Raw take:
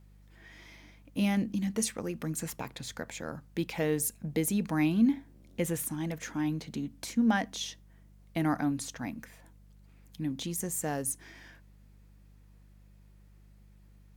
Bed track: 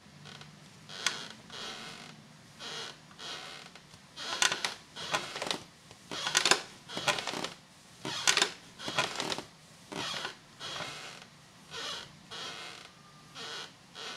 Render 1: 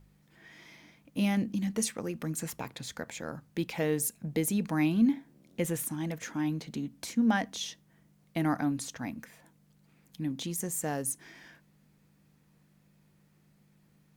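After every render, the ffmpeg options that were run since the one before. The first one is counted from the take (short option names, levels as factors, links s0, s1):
-af "bandreject=f=50:t=h:w=4,bandreject=f=100:t=h:w=4"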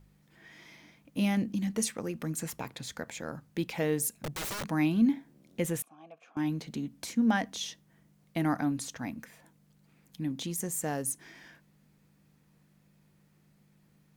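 -filter_complex "[0:a]asettb=1/sr,asplit=3[s0][s1][s2];[s0]atrim=end=4.194[s3];[s1]atrim=start=4.19:end=4.69,asetpts=PTS-STARTPTS,afade=t=in:d=0.004:c=qsin,afade=t=out:st=0.496:d=0.004:c=qsin,aeval=exprs='(mod(35.5*val(0)+1,2)-1)/35.5':c=same[s4];[s2]atrim=start=4.686[s5];[s3][s4]acrossfade=d=0.004:c1=hsin:c2=qsin[s6];[s6][s5]acrossfade=d=0.004:c1=qsin:c2=hsin,asettb=1/sr,asplit=3[s7][s8][s9];[s7]atrim=end=5.824[s10];[s8]atrim=start=5.82:end=6.37,asetpts=PTS-STARTPTS,afade=t=in:d=0.004:c=qsin,afade=t=out:st=0.546:d=0.004:c=qsin,asplit=3[s11][s12][s13];[s11]bandpass=f=730:t=q:w=8,volume=1[s14];[s12]bandpass=f=1090:t=q:w=8,volume=0.501[s15];[s13]bandpass=f=2440:t=q:w=8,volume=0.355[s16];[s14][s15][s16]amix=inputs=3:normalize=0[s17];[s9]atrim=start=6.366[s18];[s10][s17]acrossfade=d=0.004:c1=hsin:c2=qsin[s19];[s19][s18]acrossfade=d=0.004:c1=qsin:c2=hsin"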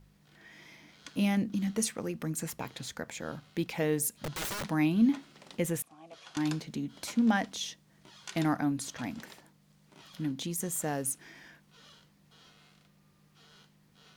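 -filter_complex "[1:a]volume=0.119[s0];[0:a][s0]amix=inputs=2:normalize=0"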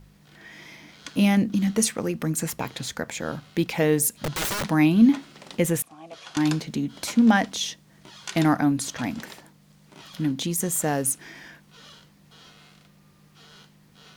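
-af "volume=2.66"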